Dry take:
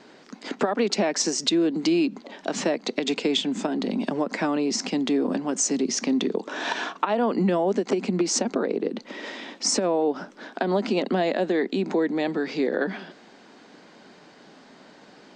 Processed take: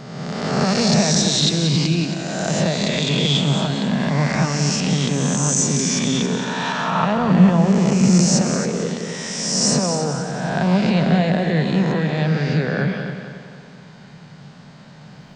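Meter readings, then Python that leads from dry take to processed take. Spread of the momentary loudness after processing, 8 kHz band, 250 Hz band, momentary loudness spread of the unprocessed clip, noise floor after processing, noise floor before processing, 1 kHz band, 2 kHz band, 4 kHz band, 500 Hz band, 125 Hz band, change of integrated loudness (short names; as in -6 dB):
9 LU, +8.0 dB, +6.5 dB, 8 LU, -42 dBFS, -51 dBFS, +5.5 dB, +6.5 dB, +8.0 dB, +1.5 dB, +19.0 dB, +6.5 dB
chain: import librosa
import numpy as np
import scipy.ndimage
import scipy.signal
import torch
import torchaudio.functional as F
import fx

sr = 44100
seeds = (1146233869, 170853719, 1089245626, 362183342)

y = fx.spec_swells(x, sr, rise_s=1.63)
y = fx.low_shelf_res(y, sr, hz=210.0, db=13.0, q=3.0)
y = fx.echo_heads(y, sr, ms=91, heads='second and third', feedback_pct=48, wet_db=-10.0)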